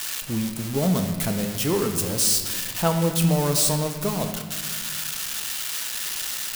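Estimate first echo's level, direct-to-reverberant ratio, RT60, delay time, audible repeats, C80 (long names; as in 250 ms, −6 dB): no echo audible, 4.5 dB, 1.7 s, no echo audible, no echo audible, 8.0 dB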